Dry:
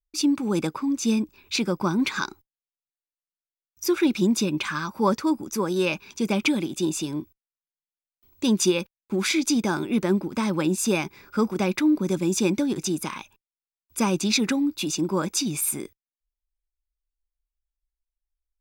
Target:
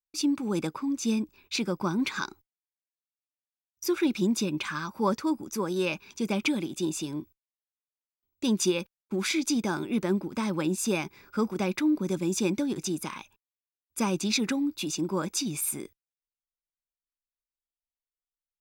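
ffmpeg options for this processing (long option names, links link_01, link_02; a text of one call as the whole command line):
ffmpeg -i in.wav -af "agate=range=-18dB:threshold=-52dB:ratio=16:detection=peak,volume=-4.5dB" out.wav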